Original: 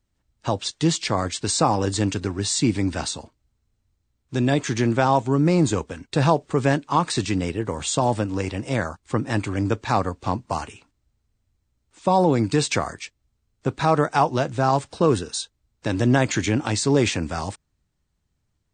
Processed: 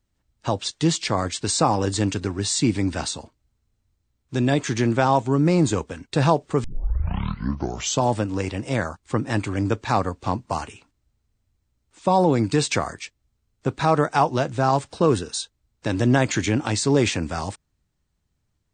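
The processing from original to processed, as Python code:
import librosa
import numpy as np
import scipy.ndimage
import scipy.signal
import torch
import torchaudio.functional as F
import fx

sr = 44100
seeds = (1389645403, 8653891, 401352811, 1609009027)

y = fx.edit(x, sr, fx.tape_start(start_s=6.64, length_s=1.4), tone=tone)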